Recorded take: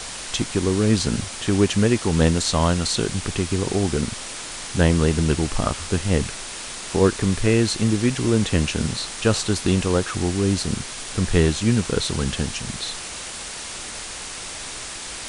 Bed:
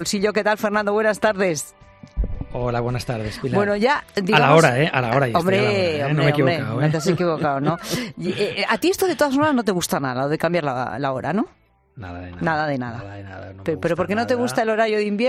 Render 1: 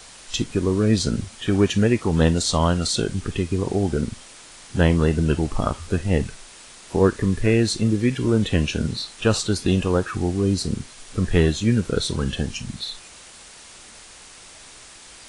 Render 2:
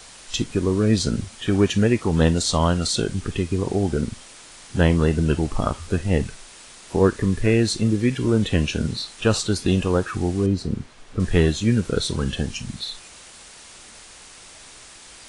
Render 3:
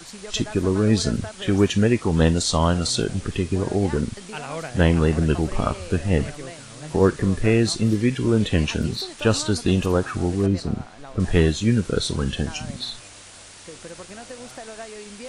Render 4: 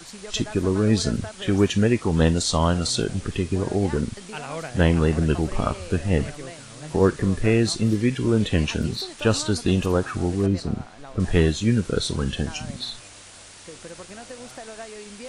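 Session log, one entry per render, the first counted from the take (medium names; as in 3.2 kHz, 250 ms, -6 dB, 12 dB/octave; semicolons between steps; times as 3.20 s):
noise print and reduce 11 dB
10.46–11.20 s: low-pass 1.7 kHz 6 dB/octave
add bed -19 dB
trim -1 dB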